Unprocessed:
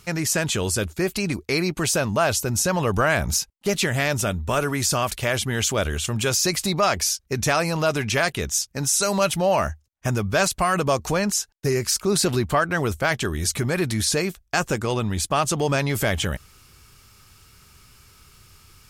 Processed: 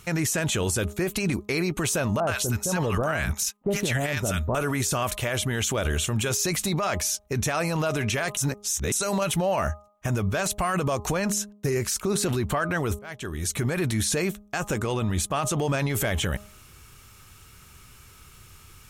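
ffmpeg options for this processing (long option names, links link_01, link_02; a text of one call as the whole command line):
ffmpeg -i in.wav -filter_complex "[0:a]asettb=1/sr,asplit=3[link_01][link_02][link_03];[link_01]atrim=end=2.204[link_04];[link_02]atrim=start=2.2:end=4.55,asetpts=PTS-STARTPTS,afade=type=in:duration=0.004:curve=qsin,afade=type=out:start_time=2.346:duration=0.004:curve=qsin,acrossover=split=1000[link_05][link_06];[link_06]adelay=70[link_07];[link_05][link_07]amix=inputs=2:normalize=0,atrim=end_sample=103635[link_08];[link_03]atrim=start=4.546[link_09];[link_04][link_08]acrossfade=duration=0.004:curve1=hsin:curve2=qsin[link_10];[link_10][link_09]acrossfade=duration=0.004:curve1=qsin:curve2=hsin,asplit=4[link_11][link_12][link_13][link_14];[link_11]atrim=end=8.372[link_15];[link_12]atrim=start=8.368:end=8.922,asetpts=PTS-STARTPTS,areverse[link_16];[link_13]atrim=start=8.918:end=12.99,asetpts=PTS-STARTPTS,afade=type=out:start_time=4.068:duration=0.004:curve=hsin[link_17];[link_14]atrim=start=12.99,asetpts=PTS-STARTPTS,afade=type=in:duration=0.85[link_18];[link_15][link_16]acrossfade=duration=0.004:curve1=hsin:curve2=hsin[link_19];[link_17][link_18]concat=n=2:v=0:a=1[link_20];[link_19][link_20]acrossfade=duration=0.004:curve1=hsin:curve2=hsin,equalizer=frequency=4800:width_type=o:width=0.31:gain=-8,bandreject=frequency=206.2:width_type=h:width=4,bandreject=frequency=412.4:width_type=h:width=4,bandreject=frequency=618.6:width_type=h:width=4,bandreject=frequency=824.8:width_type=h:width=4,bandreject=frequency=1031:width_type=h:width=4,bandreject=frequency=1237.2:width_type=h:width=4,alimiter=limit=-19dB:level=0:latency=1:release=22,volume=2dB" out.wav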